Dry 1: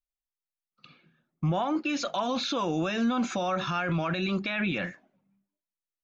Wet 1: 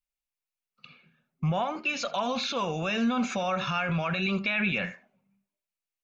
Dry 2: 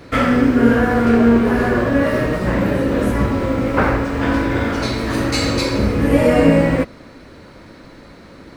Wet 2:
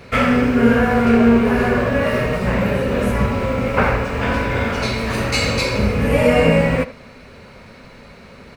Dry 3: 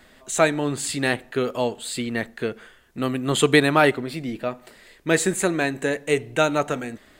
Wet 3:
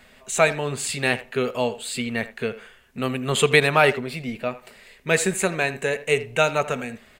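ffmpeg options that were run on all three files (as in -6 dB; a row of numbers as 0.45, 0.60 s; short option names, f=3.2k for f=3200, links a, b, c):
-filter_complex "[0:a]superequalizer=6b=0.282:12b=1.78,asplit=2[a][b];[b]adelay=80,highpass=300,lowpass=3.4k,asoftclip=type=hard:threshold=-11.5dB,volume=-15dB[c];[a][c]amix=inputs=2:normalize=0"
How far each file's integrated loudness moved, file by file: +0.5, -0.5, 0.0 LU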